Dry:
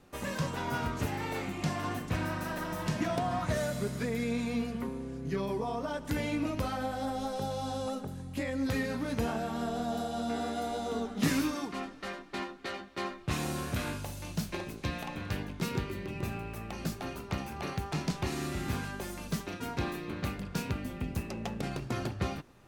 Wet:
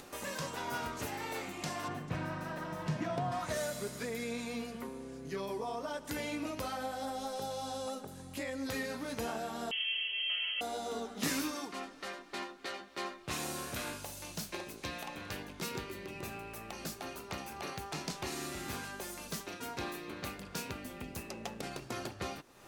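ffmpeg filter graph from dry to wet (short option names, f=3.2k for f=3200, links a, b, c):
-filter_complex "[0:a]asettb=1/sr,asplit=3[a][b][c];[a]atrim=end=1.884[d];[b]atrim=start=1.88:end=3.32,asetpts=PTS-STARTPTS,afade=t=in:d=0.004:c=qsin,afade=t=out:st=1.436:d=0.004:c=qsin,lowpass=f=2.1k:p=1,equalizer=f=140:w=2.7:g=14.5[e];[c]atrim=start=3.316[f];[d][e]acrossfade=d=0.004:c1=hsin:c2=qsin[g];[g][f]acrossfade=d=0.004:c1=qsin:c2=hsin,asettb=1/sr,asplit=3[h][i][j];[h]atrim=end=9.714[k];[i]atrim=start=9.71:end=10.61,asetpts=PTS-STARTPTS,afade=t=in:d=0.004:c=qsin,afade=t=out:st=0.896:d=0.004:c=qsin,aemphasis=mode=reproduction:type=50fm,lowpass=f=2.9k:t=q:w=0.5098,lowpass=f=2.9k:t=q:w=0.6013,lowpass=f=2.9k:t=q:w=0.9,lowpass=f=2.9k:t=q:w=2.563,afreqshift=-3400[l];[j]atrim=start=10.606[m];[k][l]acrossfade=d=0.004:c1=hsin:c2=qsin[n];[n][m]acrossfade=d=0.004:c1=qsin:c2=hsin,bass=f=250:g=-10,treble=f=4k:g=5,acompressor=mode=upward:threshold=-38dB:ratio=2.5,volume=-3dB"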